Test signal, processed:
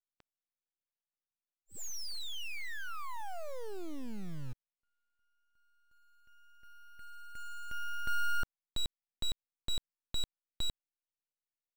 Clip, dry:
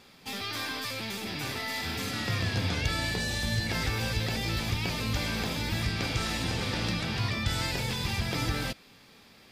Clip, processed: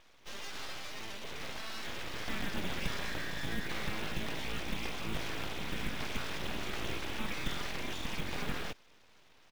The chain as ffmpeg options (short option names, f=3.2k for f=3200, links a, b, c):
-af "aresample=8000,aresample=44100,aeval=exprs='abs(val(0))':c=same,acrusher=bits=5:mode=log:mix=0:aa=0.000001,volume=-4dB"